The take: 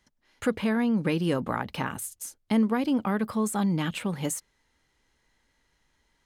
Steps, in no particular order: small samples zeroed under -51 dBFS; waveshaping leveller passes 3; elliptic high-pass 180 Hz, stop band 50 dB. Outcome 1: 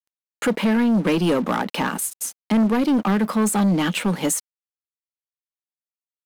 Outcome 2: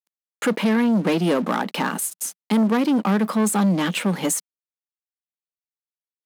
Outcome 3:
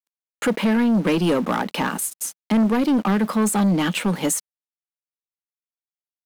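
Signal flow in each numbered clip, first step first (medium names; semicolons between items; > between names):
elliptic high-pass > small samples zeroed > waveshaping leveller; small samples zeroed > waveshaping leveller > elliptic high-pass; small samples zeroed > elliptic high-pass > waveshaping leveller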